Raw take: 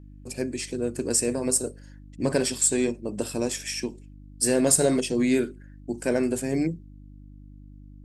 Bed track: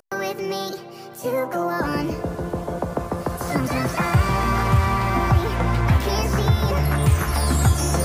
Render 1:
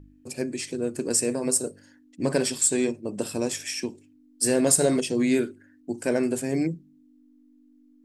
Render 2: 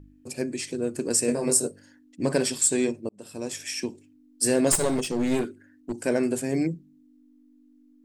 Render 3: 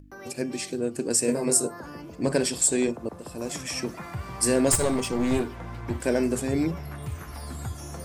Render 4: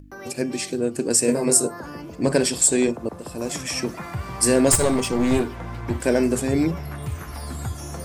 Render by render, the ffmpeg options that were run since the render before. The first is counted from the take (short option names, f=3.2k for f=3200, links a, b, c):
-af "bandreject=f=50:t=h:w=4,bandreject=f=100:t=h:w=4,bandreject=f=150:t=h:w=4,bandreject=f=200:t=h:w=4"
-filter_complex "[0:a]asettb=1/sr,asplit=3[a][b][c];[a]atrim=end=1.264[d];[b]atrim=start=1.26:end=1.67,asetpts=PTS-STARTPTS,afade=t=in:d=0.004:c=qsin,afade=t=out:st=0.406:d=0.004:c=qsin,asplit=2[e][f];[f]adelay=21,volume=-2.5dB[g];[e][g]amix=inputs=2:normalize=0,atrim=end_sample=18081[h];[c]atrim=start=1.666[i];[d][h]acrossfade=d=0.004:c1=hsin:c2=qsin[j];[j][i]acrossfade=d=0.004:c1=qsin:c2=hsin,asplit=3[k][l][m];[k]afade=t=out:st=4.71:d=0.02[n];[l]aeval=exprs='clip(val(0),-1,0.0447)':c=same,afade=t=in:st=4.71:d=0.02,afade=t=out:st=5.99:d=0.02[o];[m]afade=t=in:st=5.99:d=0.02[p];[n][o][p]amix=inputs=3:normalize=0,asplit=2[q][r];[q]atrim=end=3.09,asetpts=PTS-STARTPTS,afade=t=out:st=3.086:d=0.004:c=hsin[s];[r]atrim=start=3.09,asetpts=PTS-STARTPTS,afade=t=in:d=0.69[t];[s][t]concat=n=2:v=0:a=1"
-filter_complex "[1:a]volume=-17dB[a];[0:a][a]amix=inputs=2:normalize=0"
-af "volume=4.5dB"